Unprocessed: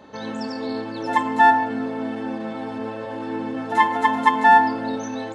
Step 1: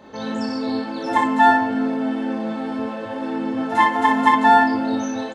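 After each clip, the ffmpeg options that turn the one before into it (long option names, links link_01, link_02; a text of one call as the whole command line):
ffmpeg -i in.wav -af "aecho=1:1:23|38|60:0.531|0.398|0.668" out.wav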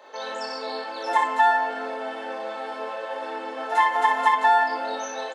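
ffmpeg -i in.wav -af "highpass=frequency=480:width=0.5412,highpass=frequency=480:width=1.3066,acompressor=threshold=-16dB:ratio=3" out.wav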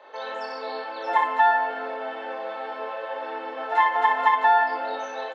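ffmpeg -i in.wav -filter_complex "[0:a]acrossover=split=260 4100:gain=0.178 1 0.0891[link_01][link_02][link_03];[link_01][link_02][link_03]amix=inputs=3:normalize=0" out.wav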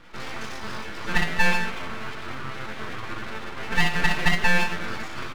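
ffmpeg -i in.wav -af "aeval=exprs='abs(val(0))':channel_layout=same,volume=1.5dB" out.wav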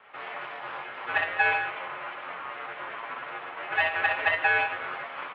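ffmpeg -i in.wav -af "lowshelf=frequency=450:width_type=q:width=1.5:gain=-13.5,highpass=frequency=200:width_type=q:width=0.5412,highpass=frequency=200:width_type=q:width=1.307,lowpass=frequency=3100:width_type=q:width=0.5176,lowpass=frequency=3100:width_type=q:width=0.7071,lowpass=frequency=3100:width_type=q:width=1.932,afreqshift=-78,volume=-1.5dB" out.wav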